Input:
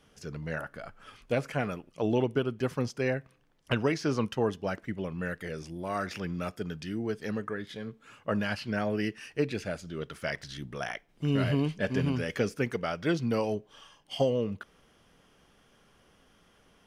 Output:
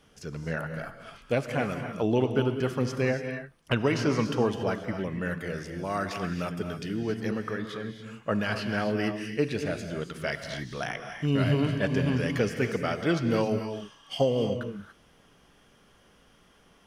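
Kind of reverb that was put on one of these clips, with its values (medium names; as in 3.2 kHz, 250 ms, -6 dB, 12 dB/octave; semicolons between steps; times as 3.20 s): gated-style reverb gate 310 ms rising, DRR 6 dB; trim +2 dB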